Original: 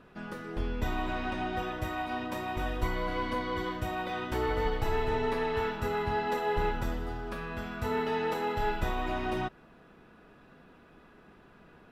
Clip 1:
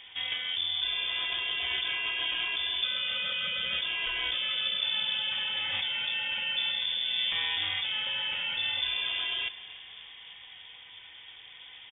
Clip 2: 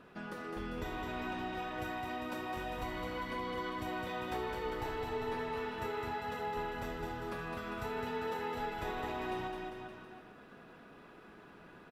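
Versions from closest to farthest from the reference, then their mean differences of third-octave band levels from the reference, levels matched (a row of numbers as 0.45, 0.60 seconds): 2, 1; 4.5, 14.5 decibels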